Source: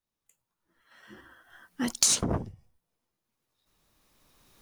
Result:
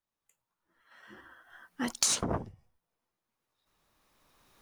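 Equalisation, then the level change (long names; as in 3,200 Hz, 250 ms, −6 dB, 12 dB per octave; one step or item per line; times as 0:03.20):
parametric band 1,100 Hz +6.5 dB 2.7 octaves
−5.5 dB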